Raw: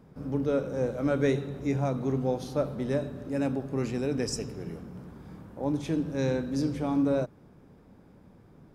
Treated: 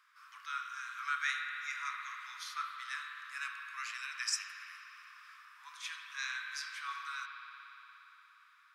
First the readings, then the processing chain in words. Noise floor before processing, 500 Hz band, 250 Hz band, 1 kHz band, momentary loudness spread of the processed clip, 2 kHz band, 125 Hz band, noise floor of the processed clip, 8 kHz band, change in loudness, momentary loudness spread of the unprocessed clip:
-56 dBFS, under -40 dB, under -40 dB, -1.5 dB, 19 LU, +6.0 dB, under -40 dB, -64 dBFS, +0.5 dB, -10.0 dB, 13 LU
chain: steep high-pass 1100 Hz 96 dB/oct; high shelf 6800 Hz -8.5 dB; spring tank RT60 3.9 s, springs 56 ms, chirp 40 ms, DRR 2.5 dB; gain +4.5 dB

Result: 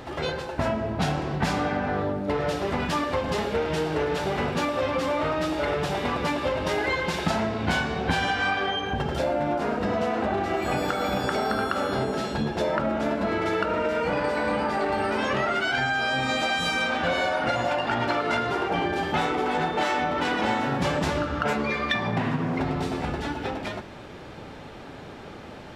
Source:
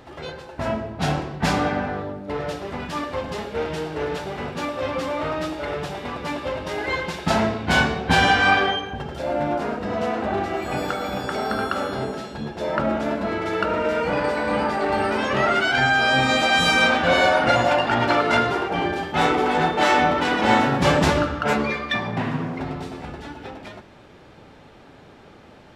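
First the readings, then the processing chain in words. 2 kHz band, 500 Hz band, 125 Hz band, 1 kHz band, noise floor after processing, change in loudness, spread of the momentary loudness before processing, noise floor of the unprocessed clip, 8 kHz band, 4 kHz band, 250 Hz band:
-5.5 dB, -2.5 dB, -2.5 dB, -4.5 dB, -41 dBFS, -4.0 dB, 13 LU, -47 dBFS, -4.5 dB, -5.0 dB, -2.5 dB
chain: compressor 10:1, threshold -28 dBFS, peak gain reduction 15.5 dB; gain +6 dB

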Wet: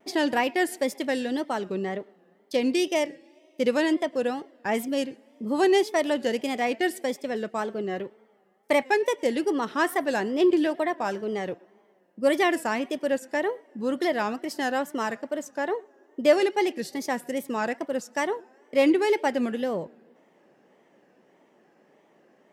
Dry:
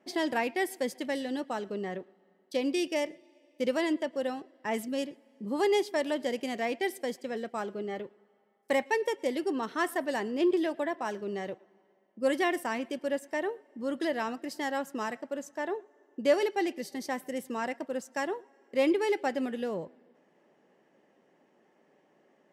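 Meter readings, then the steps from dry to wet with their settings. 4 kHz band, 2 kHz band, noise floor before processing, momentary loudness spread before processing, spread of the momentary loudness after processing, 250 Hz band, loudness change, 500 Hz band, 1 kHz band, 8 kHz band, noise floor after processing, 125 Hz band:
+5.5 dB, +5.5 dB, -68 dBFS, 10 LU, 11 LU, +5.5 dB, +5.5 dB, +5.5 dB, +5.5 dB, +6.0 dB, -62 dBFS, n/a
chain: wow and flutter 120 cents; gain +5.5 dB

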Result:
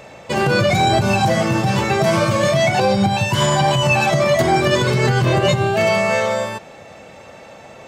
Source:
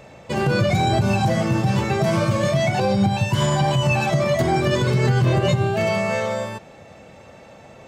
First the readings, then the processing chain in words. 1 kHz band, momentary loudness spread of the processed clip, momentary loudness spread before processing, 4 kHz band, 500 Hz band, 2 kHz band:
+5.5 dB, 3 LU, 5 LU, +6.5 dB, +4.5 dB, +6.5 dB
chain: low shelf 300 Hz -7.5 dB; gain +6.5 dB

